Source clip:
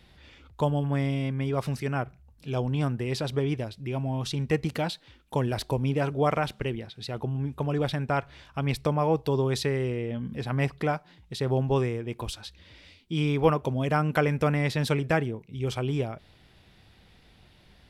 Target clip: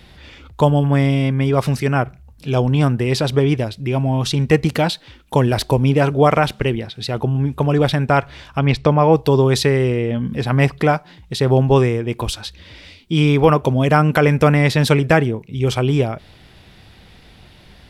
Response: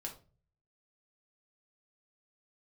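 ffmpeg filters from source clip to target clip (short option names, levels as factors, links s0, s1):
-filter_complex "[0:a]asplit=3[s0][s1][s2];[s0]afade=t=out:st=8.58:d=0.02[s3];[s1]lowpass=4600,afade=t=in:st=8.58:d=0.02,afade=t=out:st=9.11:d=0.02[s4];[s2]afade=t=in:st=9.11:d=0.02[s5];[s3][s4][s5]amix=inputs=3:normalize=0,alimiter=level_in=4.22:limit=0.891:release=50:level=0:latency=1,volume=0.891"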